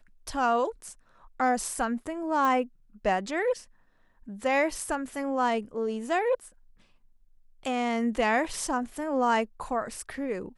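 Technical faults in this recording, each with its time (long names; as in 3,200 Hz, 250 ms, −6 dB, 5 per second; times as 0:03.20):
0:02.45: click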